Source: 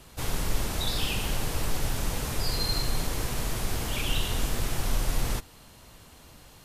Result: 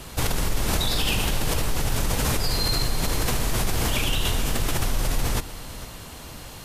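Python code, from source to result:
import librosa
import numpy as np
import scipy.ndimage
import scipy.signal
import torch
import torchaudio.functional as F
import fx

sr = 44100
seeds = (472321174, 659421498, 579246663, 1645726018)

p1 = fx.over_compress(x, sr, threshold_db=-33.0, ratio=-1.0)
p2 = x + (p1 * librosa.db_to_amplitude(3.0))
y = p2 + 10.0 ** (-15.5 / 20.0) * np.pad(p2, (int(448 * sr / 1000.0), 0))[:len(p2)]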